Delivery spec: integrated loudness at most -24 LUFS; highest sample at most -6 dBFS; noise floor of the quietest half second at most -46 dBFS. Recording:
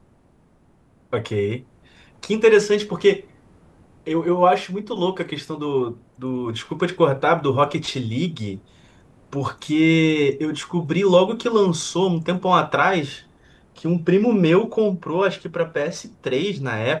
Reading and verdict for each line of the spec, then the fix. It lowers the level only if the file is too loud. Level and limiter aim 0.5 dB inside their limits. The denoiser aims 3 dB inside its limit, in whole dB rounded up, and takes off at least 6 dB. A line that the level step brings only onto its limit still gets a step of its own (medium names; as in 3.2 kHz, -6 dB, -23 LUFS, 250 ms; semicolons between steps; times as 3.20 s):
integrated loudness -20.5 LUFS: fail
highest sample -3.0 dBFS: fail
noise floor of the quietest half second -57 dBFS: pass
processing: trim -4 dB